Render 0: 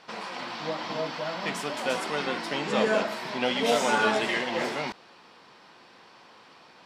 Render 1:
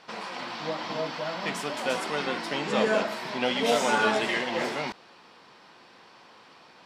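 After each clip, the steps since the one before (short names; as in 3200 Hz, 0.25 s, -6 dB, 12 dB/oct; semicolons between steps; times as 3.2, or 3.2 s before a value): nothing audible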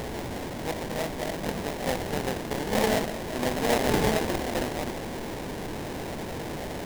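delta modulation 16 kbps, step -27.5 dBFS; sample-rate reducer 1300 Hz, jitter 20%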